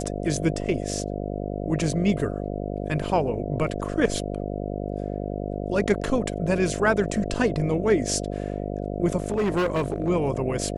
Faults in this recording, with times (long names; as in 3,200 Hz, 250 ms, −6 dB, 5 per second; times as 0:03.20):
mains buzz 50 Hz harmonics 14 −30 dBFS
0:09.20–0:10.10: clipping −19.5 dBFS